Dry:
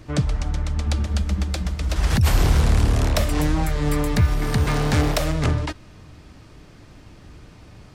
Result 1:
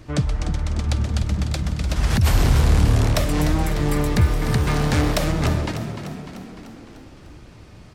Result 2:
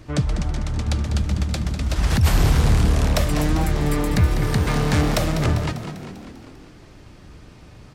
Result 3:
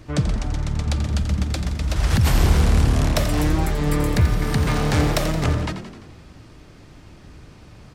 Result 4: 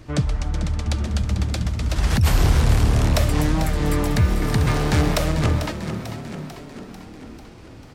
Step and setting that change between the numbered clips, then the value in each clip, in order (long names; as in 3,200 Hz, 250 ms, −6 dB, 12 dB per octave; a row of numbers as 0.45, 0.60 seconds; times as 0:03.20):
echo with shifted repeats, delay time: 299, 198, 86, 444 milliseconds